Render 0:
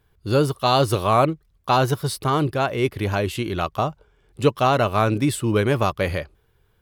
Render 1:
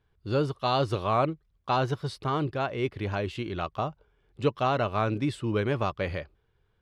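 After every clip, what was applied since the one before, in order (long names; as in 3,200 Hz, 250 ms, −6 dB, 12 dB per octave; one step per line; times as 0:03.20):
low-pass filter 4,700 Hz 12 dB per octave
level −7.5 dB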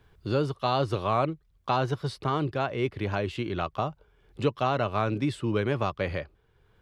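multiband upward and downward compressor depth 40%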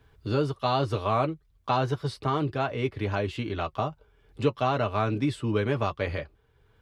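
notch comb filter 180 Hz
level +1.5 dB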